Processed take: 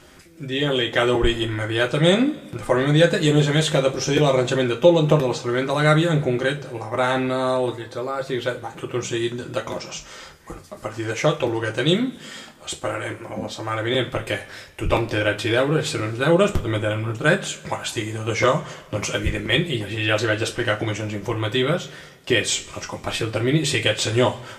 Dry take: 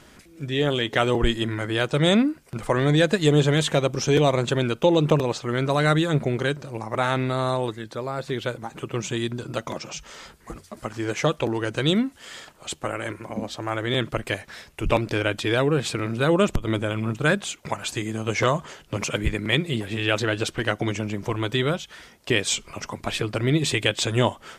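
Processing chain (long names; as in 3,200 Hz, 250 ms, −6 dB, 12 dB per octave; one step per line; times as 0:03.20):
coupled-rooms reverb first 0.23 s, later 1.5 s, from −21 dB, DRR 1 dB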